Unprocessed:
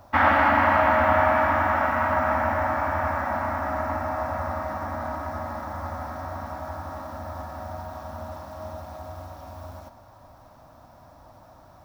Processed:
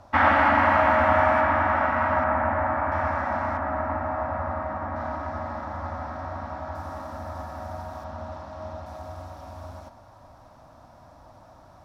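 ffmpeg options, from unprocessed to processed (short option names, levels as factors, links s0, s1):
-af "asetnsamples=n=441:p=0,asendcmd='1.41 lowpass f 4100;2.24 lowpass f 2200;2.92 lowpass f 5500;3.57 lowpass f 2300;4.96 lowpass f 4500;6.75 lowpass f 11000;8.04 lowpass f 5200;8.86 lowpass f 10000',lowpass=8300"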